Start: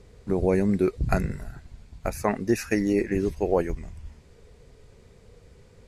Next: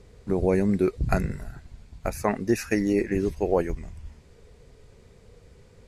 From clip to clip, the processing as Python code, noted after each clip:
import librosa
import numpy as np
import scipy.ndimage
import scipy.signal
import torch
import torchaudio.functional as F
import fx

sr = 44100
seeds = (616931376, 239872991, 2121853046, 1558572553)

y = x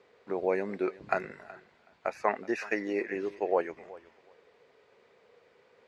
y = fx.bandpass_edges(x, sr, low_hz=540.0, high_hz=2900.0)
y = fx.echo_feedback(y, sr, ms=373, feedback_pct=18, wet_db=-20)